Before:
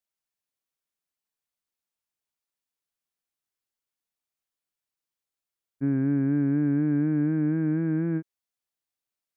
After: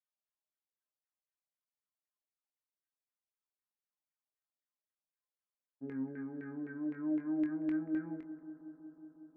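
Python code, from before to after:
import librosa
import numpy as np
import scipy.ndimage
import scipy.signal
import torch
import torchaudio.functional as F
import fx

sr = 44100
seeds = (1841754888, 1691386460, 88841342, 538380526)

y = scipy.signal.sosfilt(scipy.signal.butter(2, 110.0, 'highpass', fs=sr, output='sos'), x)
y = fx.resonator_bank(y, sr, root=56, chord='major', decay_s=0.23)
y = fx.filter_lfo_lowpass(y, sr, shape='saw_down', hz=3.9, low_hz=460.0, high_hz=2100.0, q=4.0)
y = fx.doubler(y, sr, ms=23.0, db=-8.0)
y = fx.echo_bbd(y, sr, ms=183, stages=2048, feedback_pct=82, wet_db=-16)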